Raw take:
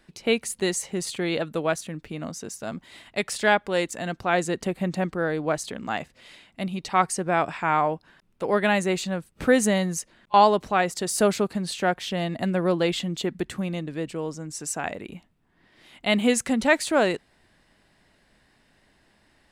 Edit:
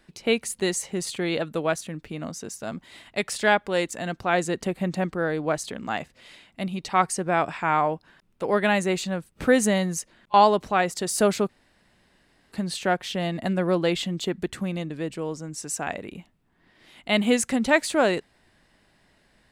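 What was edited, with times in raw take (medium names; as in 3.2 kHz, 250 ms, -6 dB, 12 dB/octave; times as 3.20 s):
11.49 s: insert room tone 1.03 s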